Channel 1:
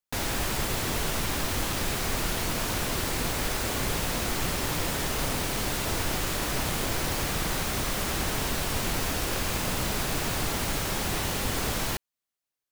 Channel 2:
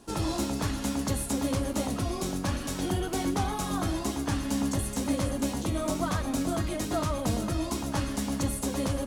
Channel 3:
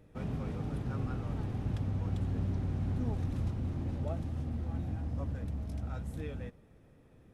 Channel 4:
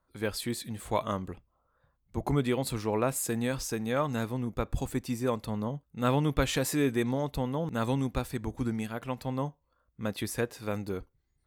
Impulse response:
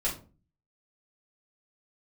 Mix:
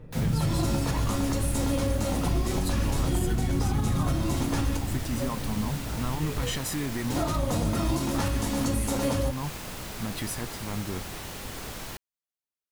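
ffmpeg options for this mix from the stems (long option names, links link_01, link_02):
-filter_complex "[0:a]volume=-9dB[link_01];[1:a]adelay=250,volume=-2dB,asplit=3[link_02][link_03][link_04];[link_02]atrim=end=4.77,asetpts=PTS-STARTPTS,afade=type=out:start_time=4.766:duration=0.004:curve=hsin[link_05];[link_03]atrim=start=4.77:end=7.1,asetpts=PTS-STARTPTS,volume=0[link_06];[link_04]atrim=start=7.1,asetpts=PTS-STARTPTS,afade=type=in:duration=0.004:curve=hsin[link_07];[link_05][link_06][link_07]concat=n=3:v=0:a=1,asplit=2[link_08][link_09];[link_09]volume=-3dB[link_10];[2:a]equalizer=frequency=140:width_type=o:width=0.78:gain=9,aphaser=in_gain=1:out_gain=1:delay=3.8:decay=0.64:speed=0.27:type=sinusoidal,volume=-3.5dB,asplit=2[link_11][link_12];[link_12]volume=-4.5dB[link_13];[3:a]aecho=1:1:1:0.65,alimiter=limit=-24dB:level=0:latency=1,volume=1.5dB[link_14];[4:a]atrim=start_sample=2205[link_15];[link_10][link_13]amix=inputs=2:normalize=0[link_16];[link_16][link_15]afir=irnorm=-1:irlink=0[link_17];[link_01][link_08][link_11][link_14][link_17]amix=inputs=5:normalize=0,alimiter=limit=-17dB:level=0:latency=1:release=173"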